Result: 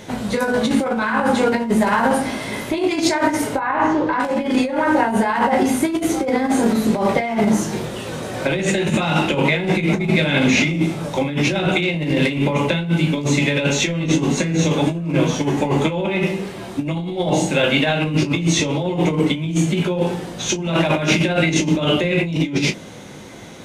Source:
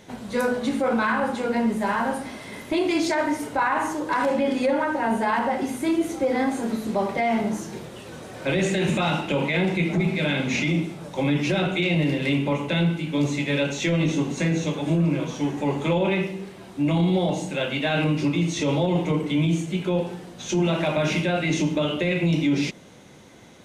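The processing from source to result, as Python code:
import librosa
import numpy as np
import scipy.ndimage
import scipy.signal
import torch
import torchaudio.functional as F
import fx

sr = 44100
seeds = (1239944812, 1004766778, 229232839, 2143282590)

y = fx.over_compress(x, sr, threshold_db=-25.0, ratio=-0.5)
y = fx.air_absorb(y, sr, metres=230.0, at=(3.56, 4.2))
y = fx.room_early_taps(y, sr, ms=(19, 35), db=(-9.5, -15.5))
y = y * librosa.db_to_amplitude(7.5)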